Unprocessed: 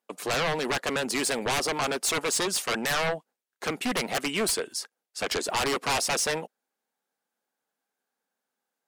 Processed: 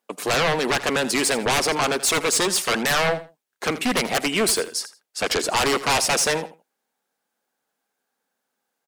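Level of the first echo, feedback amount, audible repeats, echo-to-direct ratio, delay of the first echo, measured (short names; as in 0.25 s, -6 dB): -15.0 dB, 20%, 2, -15.0 dB, 82 ms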